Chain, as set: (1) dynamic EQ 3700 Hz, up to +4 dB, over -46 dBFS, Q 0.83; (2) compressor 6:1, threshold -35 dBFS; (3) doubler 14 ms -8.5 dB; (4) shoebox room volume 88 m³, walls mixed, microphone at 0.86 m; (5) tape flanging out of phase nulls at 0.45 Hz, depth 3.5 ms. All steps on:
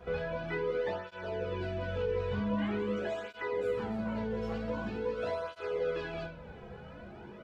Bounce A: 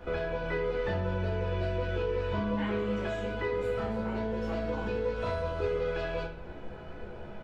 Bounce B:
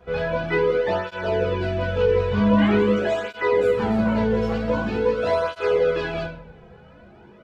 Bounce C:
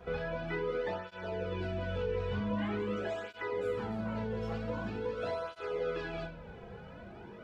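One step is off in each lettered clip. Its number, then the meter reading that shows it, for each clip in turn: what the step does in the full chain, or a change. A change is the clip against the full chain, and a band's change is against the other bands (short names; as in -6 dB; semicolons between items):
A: 5, momentary loudness spread change -1 LU; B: 2, mean gain reduction 10.5 dB; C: 3, loudness change -1.5 LU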